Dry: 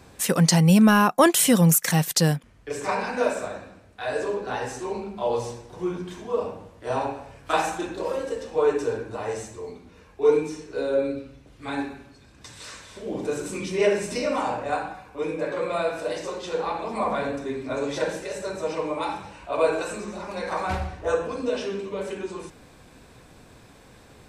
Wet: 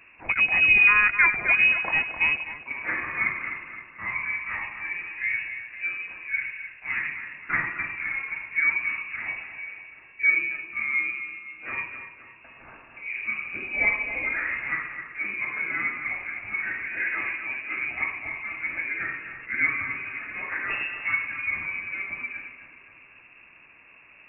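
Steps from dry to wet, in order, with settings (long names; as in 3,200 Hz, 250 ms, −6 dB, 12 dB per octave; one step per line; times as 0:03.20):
loose part that buzzes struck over −25 dBFS, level −27 dBFS
echo with a time of its own for lows and highs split 470 Hz, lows 96 ms, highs 260 ms, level −9.5 dB
voice inversion scrambler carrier 2,700 Hz
level −3 dB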